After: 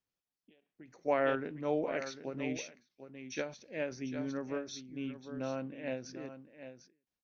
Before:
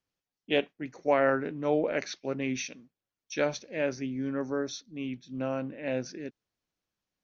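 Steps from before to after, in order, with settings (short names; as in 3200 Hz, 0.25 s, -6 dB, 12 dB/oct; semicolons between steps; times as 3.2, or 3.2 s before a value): on a send: echo 0.749 s -11 dB; on the sum: ending taper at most 140 dB/s; gain -5.5 dB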